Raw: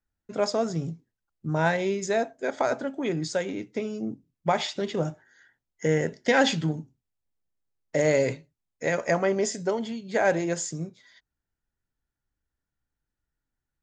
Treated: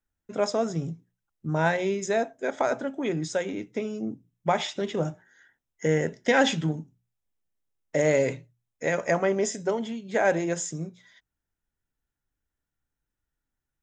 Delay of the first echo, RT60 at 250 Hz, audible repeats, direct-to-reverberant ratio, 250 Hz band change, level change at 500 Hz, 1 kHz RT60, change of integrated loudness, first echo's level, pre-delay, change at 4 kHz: none, none, none, none, 0.0 dB, 0.0 dB, none, 0.0 dB, none, none, -1.0 dB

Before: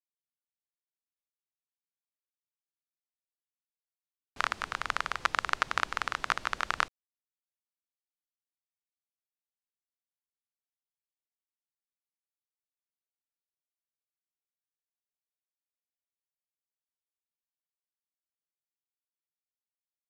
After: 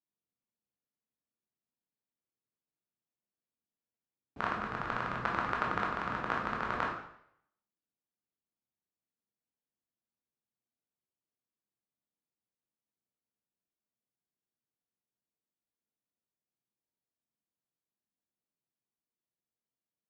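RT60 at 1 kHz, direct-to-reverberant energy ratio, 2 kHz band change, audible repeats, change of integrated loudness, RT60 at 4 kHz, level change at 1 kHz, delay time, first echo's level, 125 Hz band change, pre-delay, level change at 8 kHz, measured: 0.70 s, -2.5 dB, -4.5 dB, none, -3.0 dB, 0.65 s, -1.0 dB, none, none, +8.5 dB, 6 ms, under -15 dB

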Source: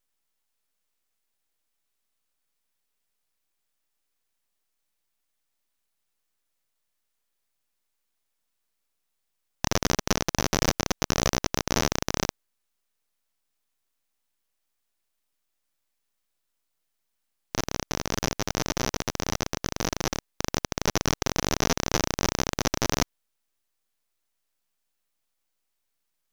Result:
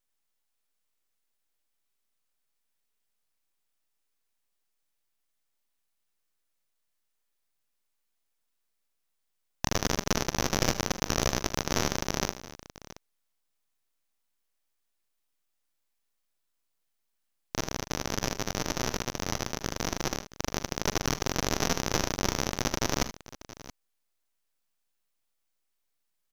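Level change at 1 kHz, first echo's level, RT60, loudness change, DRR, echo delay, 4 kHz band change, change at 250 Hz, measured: -2.5 dB, -14.5 dB, none, -2.5 dB, none, 43 ms, -2.5 dB, -2.5 dB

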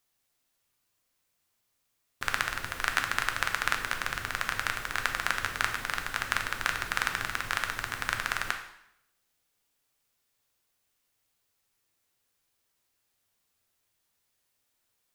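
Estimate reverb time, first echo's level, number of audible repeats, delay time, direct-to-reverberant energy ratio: 0.75 s, none, none, none, 4.0 dB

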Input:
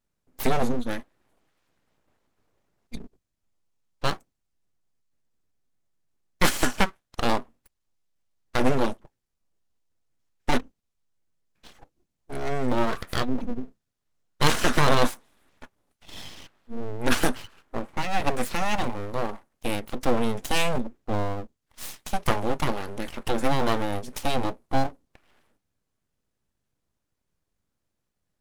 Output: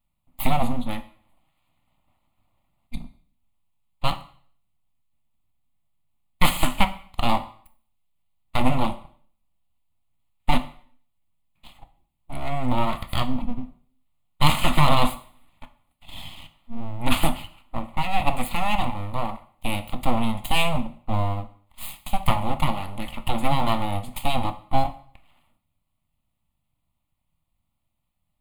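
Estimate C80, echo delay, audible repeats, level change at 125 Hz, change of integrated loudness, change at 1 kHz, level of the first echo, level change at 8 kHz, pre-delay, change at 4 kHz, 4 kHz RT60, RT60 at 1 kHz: 18.5 dB, none, none, +4.5 dB, +1.5 dB, +3.5 dB, none, -2.5 dB, 7 ms, +2.5 dB, 0.50 s, 0.50 s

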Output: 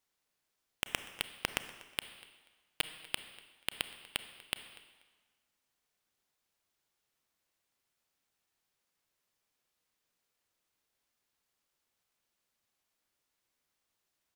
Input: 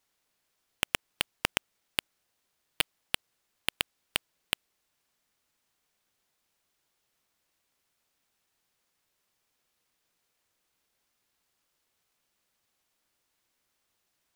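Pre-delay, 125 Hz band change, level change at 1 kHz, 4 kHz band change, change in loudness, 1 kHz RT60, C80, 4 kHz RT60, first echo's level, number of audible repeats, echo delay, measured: 29 ms, -5.5 dB, -5.5 dB, -5.5 dB, -5.5 dB, 1.3 s, 12.0 dB, 1.2 s, -20.5 dB, 2, 0.242 s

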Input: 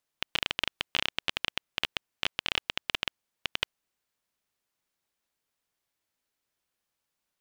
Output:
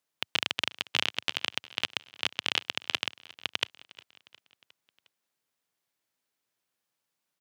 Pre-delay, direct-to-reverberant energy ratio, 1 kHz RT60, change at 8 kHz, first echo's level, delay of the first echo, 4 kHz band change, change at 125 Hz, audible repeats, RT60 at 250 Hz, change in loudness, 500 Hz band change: none, none, none, +3.5 dB, -20.5 dB, 0.358 s, +1.5 dB, -1.5 dB, 3, none, +1.0 dB, 0.0 dB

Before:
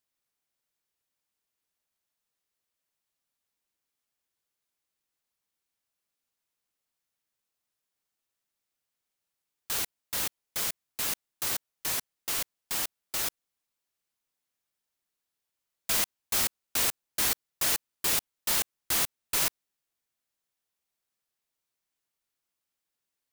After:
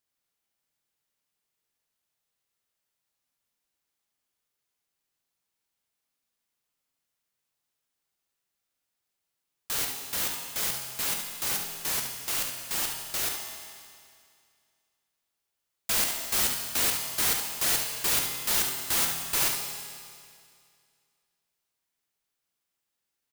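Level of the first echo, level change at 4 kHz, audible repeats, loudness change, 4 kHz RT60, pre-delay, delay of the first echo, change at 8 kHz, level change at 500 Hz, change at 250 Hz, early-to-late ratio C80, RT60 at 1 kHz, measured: -7.0 dB, +2.5 dB, 1, +2.0 dB, 2.2 s, 7 ms, 71 ms, +2.5 dB, +2.0 dB, +2.5 dB, 5.5 dB, 2.2 s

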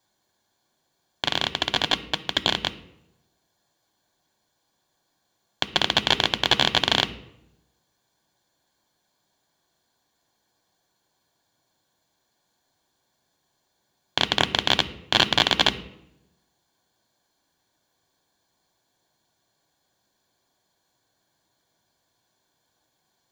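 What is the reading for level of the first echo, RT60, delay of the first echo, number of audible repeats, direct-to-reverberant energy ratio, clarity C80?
none, 0.85 s, none, none, 10.5 dB, 17.5 dB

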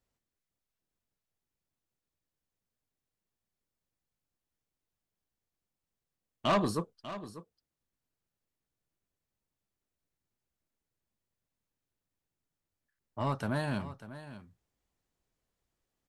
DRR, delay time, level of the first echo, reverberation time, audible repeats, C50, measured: none, 0.594 s, -14.0 dB, none, 1, none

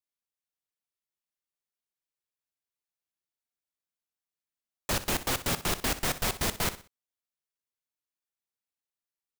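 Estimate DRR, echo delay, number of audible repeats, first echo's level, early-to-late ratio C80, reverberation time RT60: none, 62 ms, 3, -14.0 dB, none, none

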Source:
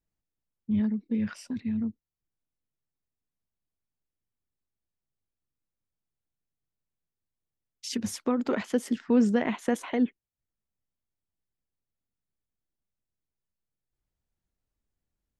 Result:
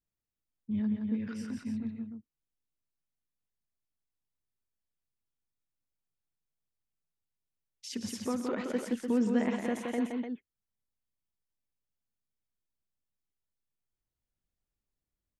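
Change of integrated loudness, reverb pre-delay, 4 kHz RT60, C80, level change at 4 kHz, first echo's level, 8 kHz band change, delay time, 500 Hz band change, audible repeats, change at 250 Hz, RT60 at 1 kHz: -5.0 dB, none, none, none, -4.5 dB, -20.0 dB, -4.5 dB, 47 ms, -4.5 dB, 4, -4.5 dB, none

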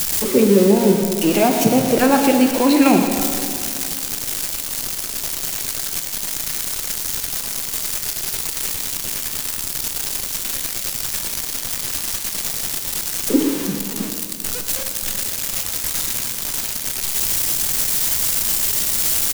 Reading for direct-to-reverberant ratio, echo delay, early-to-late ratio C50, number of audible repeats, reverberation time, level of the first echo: 4.0 dB, 0.119 s, 5.0 dB, 1, 2.7 s, -11.0 dB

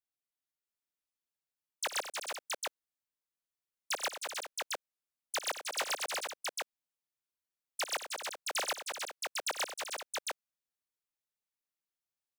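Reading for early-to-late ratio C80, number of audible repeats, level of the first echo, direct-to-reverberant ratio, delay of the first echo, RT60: none, 5, -15.5 dB, none, 57 ms, none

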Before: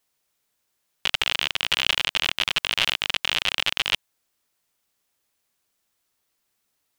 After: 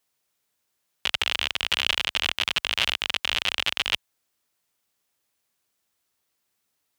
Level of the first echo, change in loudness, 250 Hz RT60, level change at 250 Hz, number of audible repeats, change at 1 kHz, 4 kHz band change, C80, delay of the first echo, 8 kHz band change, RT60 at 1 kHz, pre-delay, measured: none, -1.5 dB, none, -1.5 dB, none, -1.5 dB, -1.5 dB, none, none, -1.5 dB, none, none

